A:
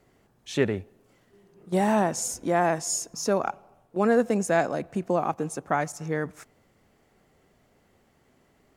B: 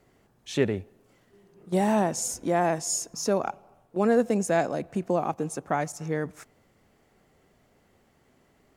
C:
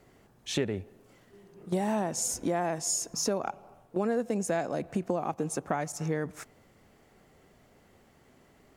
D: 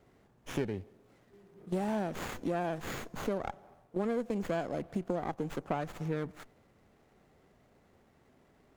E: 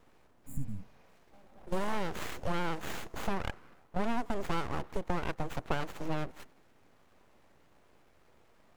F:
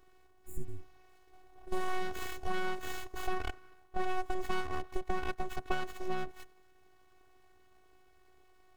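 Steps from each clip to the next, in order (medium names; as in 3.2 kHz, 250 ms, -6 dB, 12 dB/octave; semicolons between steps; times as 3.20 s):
dynamic bell 1.4 kHz, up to -4 dB, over -40 dBFS, Q 1.1
compression 4:1, threshold -30 dBFS, peak gain reduction 11.5 dB; trim +3 dB
sliding maximum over 9 samples; trim -4 dB
full-wave rectifier; spectral replace 0.47–1.08 s, 280–6800 Hz after; trim +3 dB
robot voice 370 Hz; trim +1 dB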